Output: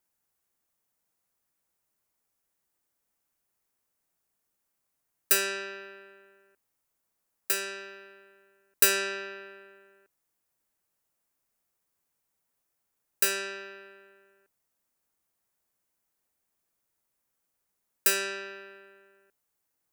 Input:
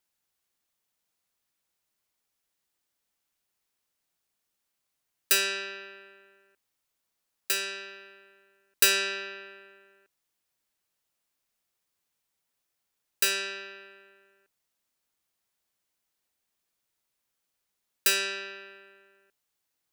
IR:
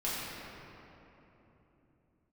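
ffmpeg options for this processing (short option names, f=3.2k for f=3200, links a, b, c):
-af "equalizer=f=3.6k:t=o:w=1.6:g=-8.5,volume=2.5dB"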